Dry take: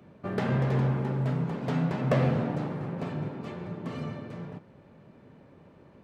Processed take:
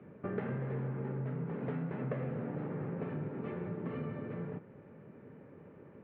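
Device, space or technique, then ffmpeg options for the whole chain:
bass amplifier: -af "acompressor=threshold=-35dB:ratio=5,highpass=88,equalizer=frequency=440:width_type=q:width=4:gain=5,equalizer=frequency=680:width_type=q:width=4:gain=-5,equalizer=frequency=1000:width_type=q:width=4:gain=-4,lowpass=frequency=2300:width=0.5412,lowpass=frequency=2300:width=1.3066"

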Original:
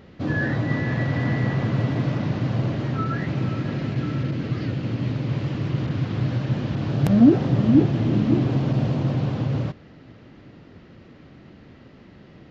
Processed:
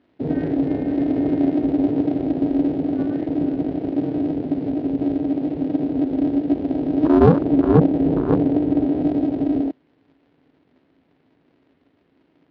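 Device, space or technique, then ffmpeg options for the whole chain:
ring modulator pedal into a guitar cabinet: -filter_complex "[0:a]highpass=55,aeval=exprs='val(0)*sgn(sin(2*PI*160*n/s))':channel_layout=same,highpass=100,equalizer=frequency=160:width_type=q:width=4:gain=5,equalizer=frequency=270:width_type=q:width=4:gain=10,equalizer=frequency=1200:width_type=q:width=4:gain=-3,lowpass=frequency=4200:width=0.5412,lowpass=frequency=4200:width=1.3066,asettb=1/sr,asplit=3[link_01][link_02][link_03];[link_01]atrim=end=7.444[link_04];[link_02]atrim=start=7.44:end=9.02,asetpts=PTS-STARTPTS,afade=type=in:duration=0.004:curve=qsin,afade=type=out:start_time=1.576:duration=0.004:curve=qsin,highshelf=frequency=4900:gain=-6.5[link_05];[link_03]atrim=start=9.016[link_06];[link_04][link_05]acrossfade=duration=0.004:curve1=hsin:curve2=qsin[link_07];[link_07][link_06]acrossfade=duration=0.004:curve1=qsin:curve2=hsin,afwtdn=0.0891"

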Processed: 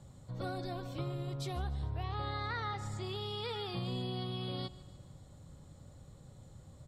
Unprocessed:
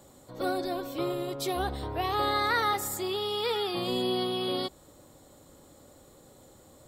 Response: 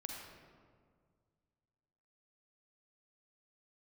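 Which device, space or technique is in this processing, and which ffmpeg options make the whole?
jukebox: -filter_complex "[0:a]asettb=1/sr,asplit=3[link_01][link_02][link_03];[link_01]atrim=end=2.034[link_04];[link_02]atrim=start=2.03:end=3.03,asetpts=PTS-STARTPTS,afade=type=in:duration=0.004:curve=qsin,afade=type=out:start_time=0.996:duration=0.004:curve=qsin,lowpass=5300[link_05];[link_03]atrim=start=3.026[link_06];[link_04][link_05]acrossfade=duration=0.004:curve1=hsin:curve2=qsin[link_07];[link_07][link_06]acrossfade=duration=0.004:curve1=qsin:curve2=hsin,lowpass=7900,lowshelf=frequency=210:width_type=q:width=1.5:gain=13,acompressor=threshold=-29dB:ratio=3,aecho=1:1:147|294|441|588:0.112|0.0583|0.0303|0.0158,volume=-6.5dB"

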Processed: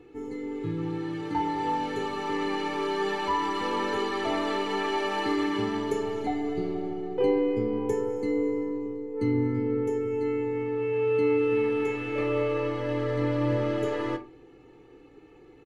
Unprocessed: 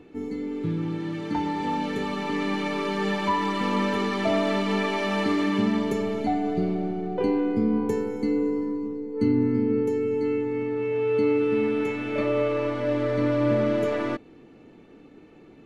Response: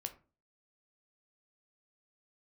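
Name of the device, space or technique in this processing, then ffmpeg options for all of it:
microphone above a desk: -filter_complex "[0:a]aecho=1:1:2.4:0.72[link_01];[1:a]atrim=start_sample=2205[link_02];[link_01][link_02]afir=irnorm=-1:irlink=0,volume=-1.5dB"

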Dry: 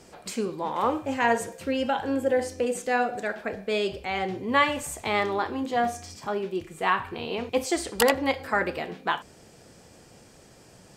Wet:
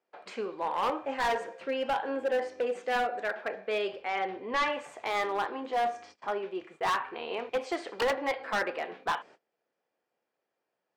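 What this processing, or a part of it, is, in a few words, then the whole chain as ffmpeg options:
walkie-talkie: -filter_complex "[0:a]highpass=480,lowpass=2500,asoftclip=type=hard:threshold=-24dB,agate=range=-26dB:threshold=-51dB:ratio=16:detection=peak,asettb=1/sr,asplit=3[link_01][link_02][link_03];[link_01]atrim=end=4.024[link_04];[link_02]atrim=start=4.02:end=4.73,asetpts=PTS-STARTPTS,afade=type=in:duration=0.004:curve=qsin,afade=type=out:start_time=0.706:duration=0.004:curve=qsin,lowpass=5200[link_05];[link_03]atrim=start=4.726[link_06];[link_04][link_05]acrossfade=duration=0.004:curve1=hsin:curve2=qsin[link_07];[link_07][link_06]acrossfade=duration=0.004:curve1=qsin:curve2=hsin"

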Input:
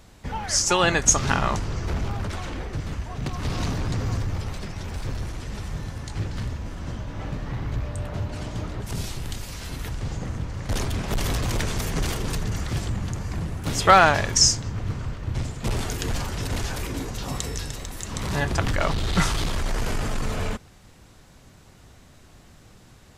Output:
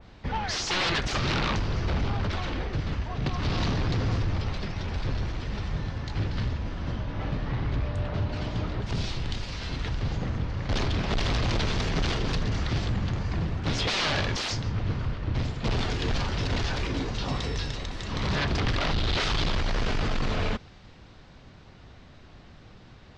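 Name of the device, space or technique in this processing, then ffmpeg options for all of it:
synthesiser wavefolder: -af "aeval=exprs='0.075*(abs(mod(val(0)/0.075+3,4)-2)-1)':channel_layout=same,lowpass=frequency=4700:width=0.5412,lowpass=frequency=4700:width=1.3066,adynamicequalizer=threshold=0.00631:dfrequency=2800:dqfactor=0.7:tfrequency=2800:tqfactor=0.7:attack=5:release=100:ratio=0.375:range=2:mode=boostabove:tftype=highshelf,volume=1dB"

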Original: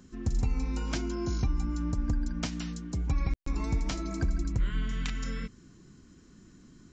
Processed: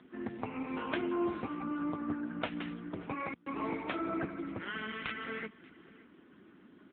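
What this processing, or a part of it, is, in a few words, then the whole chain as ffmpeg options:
satellite phone: -af "highpass=390,lowpass=3100,aecho=1:1:581:0.0891,volume=7.5dB" -ar 8000 -c:a libopencore_amrnb -b:a 6700

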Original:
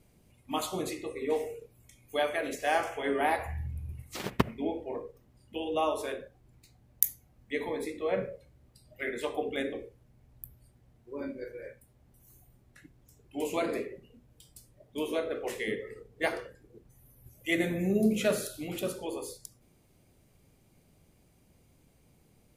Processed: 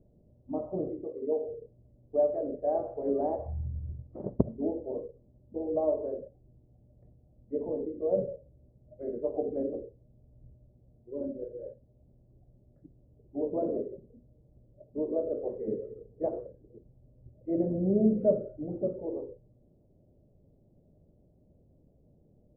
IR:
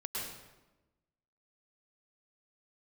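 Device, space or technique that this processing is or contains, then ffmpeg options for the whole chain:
under water: -filter_complex "[0:a]asettb=1/sr,asplit=3[link_01][link_02][link_03];[link_01]atrim=end=1.044[link_04];[link_02]atrim=start=1.04:end=1.48,asetpts=PTS-STARTPTS,afade=type=in:duration=0.004:curve=qsin,afade=type=out:start_time=0.436:duration=0.004:curve=qsin,highpass=frequency=290:poles=1[link_05];[link_03]atrim=start=1.476[link_06];[link_04][link_05]acrossfade=duration=0.004:curve1=hsin:curve2=qsin[link_07];[link_07][link_06]acrossfade=duration=0.004:curve1=qsin:curve2=hsin,lowpass=frequency=600:width=0.5412,lowpass=frequency=600:width=1.3066,aemphasis=mode=reproduction:type=75kf,equalizer=frequency=600:width_type=o:width=0.24:gain=7.5,volume=1.5dB"

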